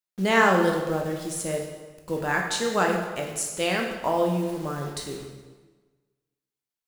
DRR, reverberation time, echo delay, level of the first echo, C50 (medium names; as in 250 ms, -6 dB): 0.5 dB, 1.3 s, no echo, no echo, 4.5 dB